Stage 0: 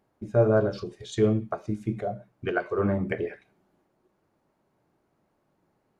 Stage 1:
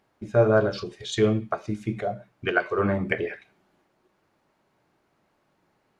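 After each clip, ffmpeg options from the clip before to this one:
-af "equalizer=f=2.9k:w=0.38:g=9"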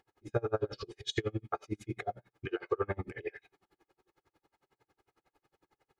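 -af "aecho=1:1:2.4:0.68,acompressor=threshold=-26dB:ratio=2.5,aeval=exprs='val(0)*pow(10,-34*(0.5-0.5*cos(2*PI*11*n/s))/20)':c=same"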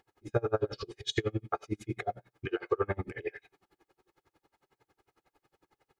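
-filter_complex "[0:a]asplit=2[a][b];[b]adelay=99.13,volume=-27dB,highshelf=f=4k:g=-2.23[c];[a][c]amix=inputs=2:normalize=0,volume=2.5dB"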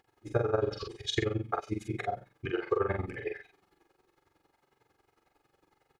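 -filter_complex "[0:a]asplit=2[a][b];[b]adelay=44,volume=-4dB[c];[a][c]amix=inputs=2:normalize=0"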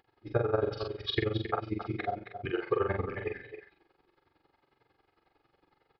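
-af "aecho=1:1:270:0.316,aresample=11025,aresample=44100"

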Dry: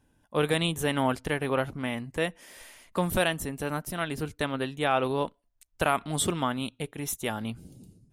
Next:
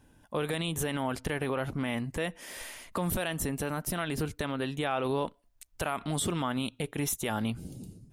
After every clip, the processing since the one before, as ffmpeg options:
-filter_complex "[0:a]asplit=2[a][b];[b]acompressor=threshold=-36dB:ratio=6,volume=0.5dB[c];[a][c]amix=inputs=2:normalize=0,alimiter=limit=-20.5dB:level=0:latency=1:release=56"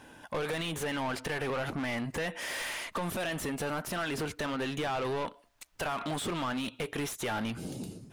-filter_complex "[0:a]acompressor=threshold=-32dB:ratio=6,asplit=2[a][b];[b]highpass=f=720:p=1,volume=25dB,asoftclip=type=tanh:threshold=-22.5dB[c];[a][c]amix=inputs=2:normalize=0,lowpass=f=3.2k:p=1,volume=-6dB,volume=-2.5dB"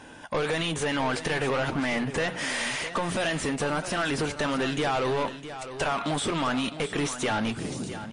-af "bandreject=f=60:t=h:w=6,bandreject=f=120:t=h:w=6,bandreject=f=180:t=h:w=6,aecho=1:1:659|1318|1977:0.251|0.0578|0.0133,volume=6.5dB" -ar 22050 -c:a libmp3lame -b:a 40k

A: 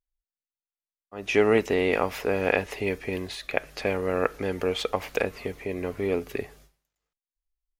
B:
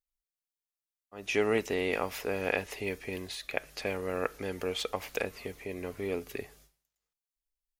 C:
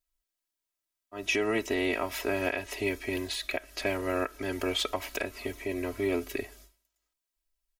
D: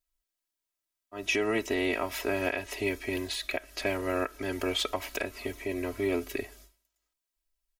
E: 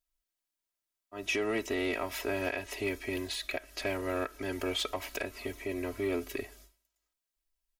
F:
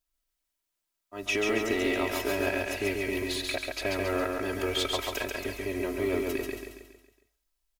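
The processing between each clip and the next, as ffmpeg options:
-af "highshelf=f=3.6k:g=8.5,volume=-7.5dB"
-af "aecho=1:1:3.1:0.92,alimiter=limit=-20.5dB:level=0:latency=1:release=285,volume=3dB"
-af anull
-af "asoftclip=type=tanh:threshold=-20dB,volume=-2dB"
-filter_complex "[0:a]acrusher=bits=8:mode=log:mix=0:aa=0.000001,asplit=2[a][b];[b]aecho=0:1:138|276|414|552|690|828:0.708|0.34|0.163|0.0783|0.0376|0.018[c];[a][c]amix=inputs=2:normalize=0,volume=2.5dB"

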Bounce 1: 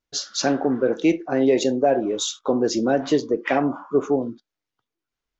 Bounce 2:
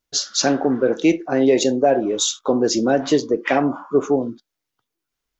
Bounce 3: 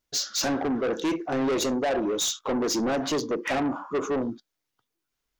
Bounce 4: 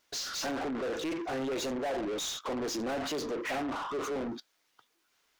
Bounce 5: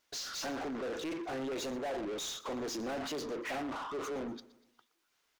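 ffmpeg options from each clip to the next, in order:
-af "highshelf=f=5.9k:g=7.5,volume=2.5dB"
-af "asoftclip=type=tanh:threshold=-21.5dB,volume=-1dB"
-filter_complex "[0:a]asplit=2[a][b];[b]highpass=f=720:p=1,volume=28dB,asoftclip=type=tanh:threshold=-22dB[c];[a][c]amix=inputs=2:normalize=0,lowpass=f=5k:p=1,volume=-6dB,volume=-8dB"
-af "aecho=1:1:121|242|363|484:0.112|0.0516|0.0237|0.0109,volume=-4dB"

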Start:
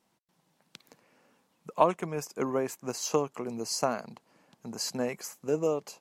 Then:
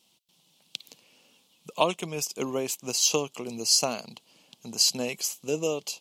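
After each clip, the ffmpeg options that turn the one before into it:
-af "highshelf=f=2.3k:t=q:w=3:g=10"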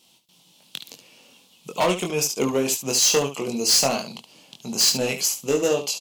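-filter_complex "[0:a]volume=22.5dB,asoftclip=hard,volume=-22.5dB,asplit=2[a][b];[b]aecho=0:1:22|72:0.631|0.335[c];[a][c]amix=inputs=2:normalize=0,volume=6.5dB"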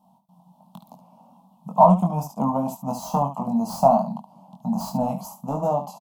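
-af "firequalizer=gain_entry='entry(120,0);entry(190,15);entry(390,-24);entry(650,10);entry(940,12);entry(1700,-30);entry(2400,-29);entry(3500,-25);entry(6900,-23);entry(12000,-13)':delay=0.05:min_phase=1"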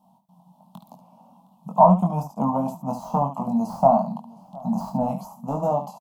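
-filter_complex "[0:a]acrossover=split=2000[a][b];[b]acompressor=threshold=-51dB:ratio=6[c];[a][c]amix=inputs=2:normalize=0,aecho=1:1:714:0.0668"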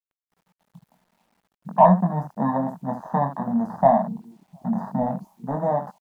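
-af "afwtdn=0.0316,acrusher=bits=10:mix=0:aa=0.000001"

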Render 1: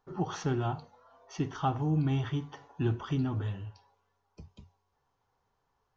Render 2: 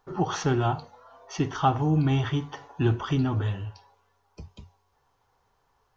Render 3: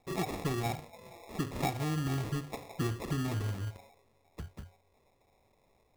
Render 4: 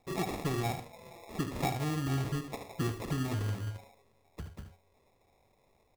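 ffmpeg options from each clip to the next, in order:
-af "equalizer=f=190:t=o:w=1.8:g=-4,volume=8.5dB"
-filter_complex "[0:a]acrossover=split=1400|3400[a][b][c];[a]acompressor=threshold=-32dB:ratio=4[d];[b]acompressor=threshold=-45dB:ratio=4[e];[c]acompressor=threshold=-59dB:ratio=4[f];[d][e][f]amix=inputs=3:normalize=0,acrusher=samples=29:mix=1:aa=0.000001"
-af "aecho=1:1:75:0.335"

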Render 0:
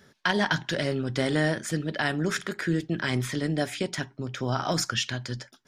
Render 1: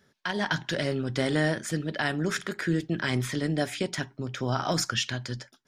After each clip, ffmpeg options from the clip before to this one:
-af "dynaudnorm=f=170:g=5:m=8dB,volume=-8dB"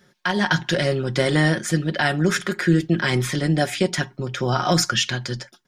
-af "aecho=1:1:5.6:0.53,volume=6.5dB"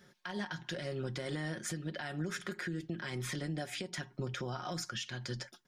-af "acompressor=threshold=-27dB:ratio=5,alimiter=limit=-23.5dB:level=0:latency=1:release=243,volume=-4.5dB"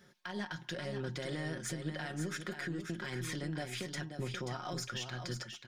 -filter_complex "[0:a]aeval=exprs='0.0422*(cos(1*acos(clip(val(0)/0.0422,-1,1)))-cos(1*PI/2))+0.000841*(cos(8*acos(clip(val(0)/0.0422,-1,1)))-cos(8*PI/2))':c=same,asplit=2[a][b];[b]aecho=0:1:533:0.422[c];[a][c]amix=inputs=2:normalize=0,volume=-1dB"

